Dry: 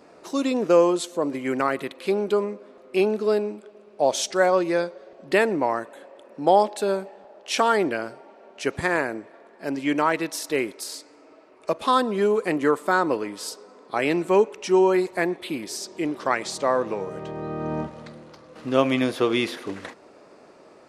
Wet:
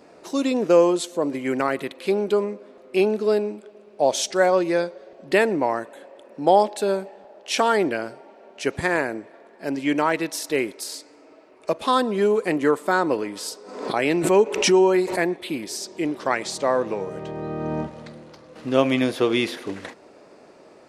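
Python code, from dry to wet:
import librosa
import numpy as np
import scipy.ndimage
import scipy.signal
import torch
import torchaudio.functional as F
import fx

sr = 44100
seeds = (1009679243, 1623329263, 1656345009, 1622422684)

y = fx.peak_eq(x, sr, hz=1200.0, db=-3.5, octaves=0.53)
y = fx.pre_swell(y, sr, db_per_s=66.0, at=(13.11, 15.2))
y = y * 10.0 ** (1.5 / 20.0)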